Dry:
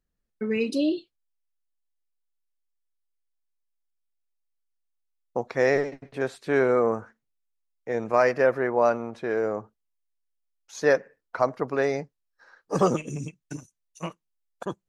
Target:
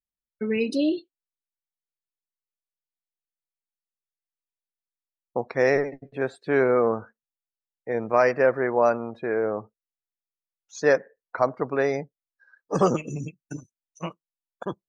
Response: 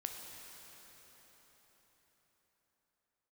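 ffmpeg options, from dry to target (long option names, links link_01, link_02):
-af "afftdn=noise_reduction=21:noise_floor=-46,volume=1dB"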